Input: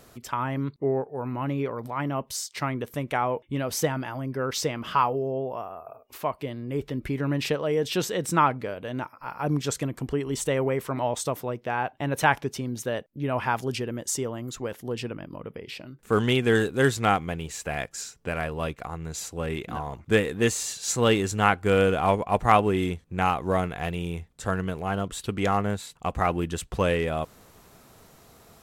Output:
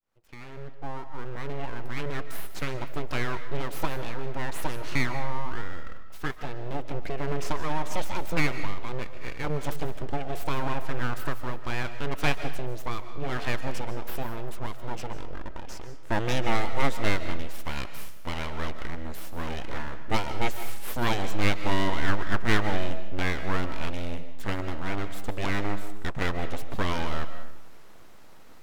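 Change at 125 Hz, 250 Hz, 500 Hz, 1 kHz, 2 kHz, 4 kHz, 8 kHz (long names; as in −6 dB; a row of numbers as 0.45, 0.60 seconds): −3.5, −5.5, −8.5, −6.5, −1.5, −2.5, −11.0 decibels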